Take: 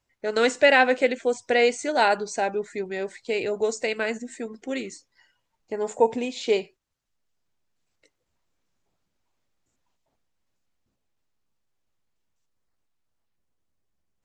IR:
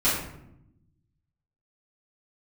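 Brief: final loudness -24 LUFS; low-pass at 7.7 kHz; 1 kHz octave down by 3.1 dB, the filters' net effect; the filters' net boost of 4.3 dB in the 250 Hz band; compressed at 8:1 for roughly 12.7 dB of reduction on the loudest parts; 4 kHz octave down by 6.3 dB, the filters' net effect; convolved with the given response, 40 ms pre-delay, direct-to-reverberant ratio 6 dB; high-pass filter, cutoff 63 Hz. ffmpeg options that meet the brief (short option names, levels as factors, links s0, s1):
-filter_complex "[0:a]highpass=63,lowpass=7700,equalizer=f=250:t=o:g=5,equalizer=f=1000:t=o:g=-4.5,equalizer=f=4000:t=o:g=-8.5,acompressor=threshold=0.0447:ratio=8,asplit=2[s0][s1];[1:a]atrim=start_sample=2205,adelay=40[s2];[s1][s2]afir=irnorm=-1:irlink=0,volume=0.1[s3];[s0][s3]amix=inputs=2:normalize=0,volume=2.37"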